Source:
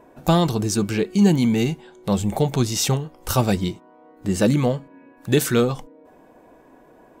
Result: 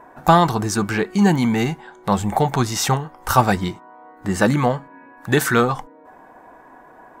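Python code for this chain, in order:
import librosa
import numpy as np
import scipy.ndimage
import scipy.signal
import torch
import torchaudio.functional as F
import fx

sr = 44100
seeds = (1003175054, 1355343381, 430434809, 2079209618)

y = fx.band_shelf(x, sr, hz=1200.0, db=10.5, octaves=1.7)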